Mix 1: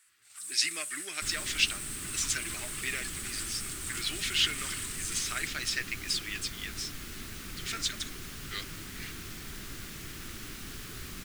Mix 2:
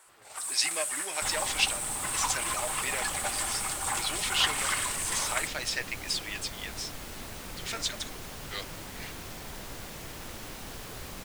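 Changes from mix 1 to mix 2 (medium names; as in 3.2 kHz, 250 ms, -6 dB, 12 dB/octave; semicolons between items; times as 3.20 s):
first sound: remove amplifier tone stack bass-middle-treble 5-5-5; master: add high-order bell 690 Hz +12.5 dB 1.3 oct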